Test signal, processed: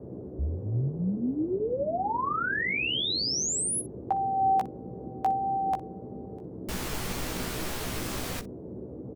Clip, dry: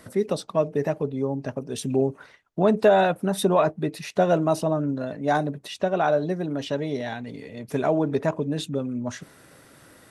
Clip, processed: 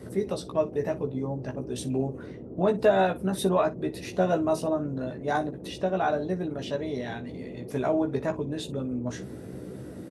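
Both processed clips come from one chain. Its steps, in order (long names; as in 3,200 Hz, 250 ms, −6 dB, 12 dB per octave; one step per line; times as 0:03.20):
noise in a band 72–460 Hz −36 dBFS
pitch vibrato 1.5 Hz 10 cents
ambience of single reflections 16 ms −4.5 dB, 60 ms −17 dB
level −5.5 dB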